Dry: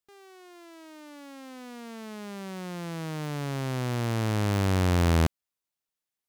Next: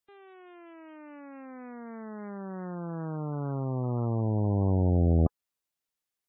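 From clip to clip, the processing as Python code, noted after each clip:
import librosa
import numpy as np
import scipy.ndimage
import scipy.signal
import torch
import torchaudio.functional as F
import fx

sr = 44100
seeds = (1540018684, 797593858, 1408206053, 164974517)

y = fx.spec_gate(x, sr, threshold_db=-20, keep='strong')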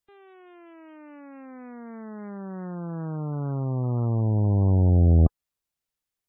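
y = fx.low_shelf(x, sr, hz=130.0, db=10.0)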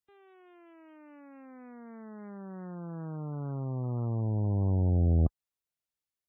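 y = scipy.signal.sosfilt(scipy.signal.butter(2, 45.0, 'highpass', fs=sr, output='sos'), x)
y = y * librosa.db_to_amplitude(-7.0)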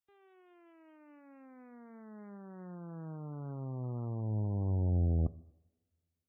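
y = fx.rev_double_slope(x, sr, seeds[0], early_s=0.83, late_s=2.5, knee_db=-25, drr_db=16.5)
y = y * librosa.db_to_amplitude(-5.5)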